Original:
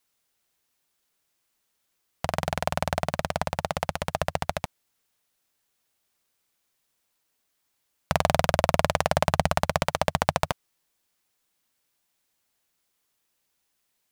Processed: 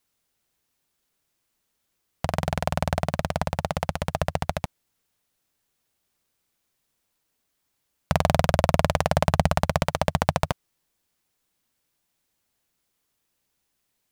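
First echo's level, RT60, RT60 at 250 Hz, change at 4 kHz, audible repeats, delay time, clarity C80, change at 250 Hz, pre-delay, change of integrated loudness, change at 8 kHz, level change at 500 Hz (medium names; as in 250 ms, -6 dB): no echo, no reverb, no reverb, -1.0 dB, no echo, no echo, no reverb, +4.5 dB, no reverb, +1.5 dB, -1.0 dB, +1.0 dB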